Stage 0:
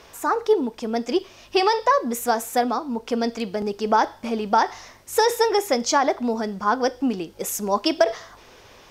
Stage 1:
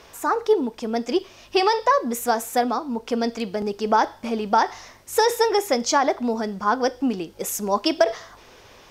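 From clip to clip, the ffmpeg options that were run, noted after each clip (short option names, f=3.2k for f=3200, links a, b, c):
-af anull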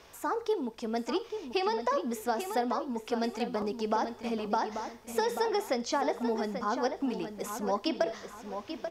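-filter_complex "[0:a]acrossover=split=740|4600[a][b][c];[a]acompressor=threshold=-21dB:ratio=4[d];[b]acompressor=threshold=-26dB:ratio=4[e];[c]acompressor=threshold=-40dB:ratio=4[f];[d][e][f]amix=inputs=3:normalize=0,asplit=2[g][h];[h]adelay=837,lowpass=f=4.5k:p=1,volume=-8dB,asplit=2[i][j];[j]adelay=837,lowpass=f=4.5k:p=1,volume=0.35,asplit=2[k][l];[l]adelay=837,lowpass=f=4.5k:p=1,volume=0.35,asplit=2[m][n];[n]adelay=837,lowpass=f=4.5k:p=1,volume=0.35[o];[g][i][k][m][o]amix=inputs=5:normalize=0,volume=-7dB"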